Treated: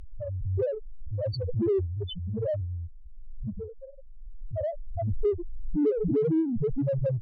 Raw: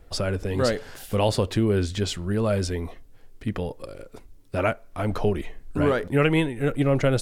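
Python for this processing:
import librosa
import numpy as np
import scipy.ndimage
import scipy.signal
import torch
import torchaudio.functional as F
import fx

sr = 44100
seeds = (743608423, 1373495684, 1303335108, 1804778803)

p1 = fx.spec_topn(x, sr, count=1)
p2 = fx.dynamic_eq(p1, sr, hz=380.0, q=2.1, threshold_db=-41.0, ratio=4.0, max_db=5)
p3 = fx.env_lowpass_down(p2, sr, base_hz=750.0, full_db=-24.5)
p4 = 10.0 ** (-35.0 / 20.0) * np.tanh(p3 / 10.0 ** (-35.0 / 20.0))
p5 = p3 + (p4 * 10.0 ** (-9.5 / 20.0))
y = fx.pre_swell(p5, sr, db_per_s=27.0)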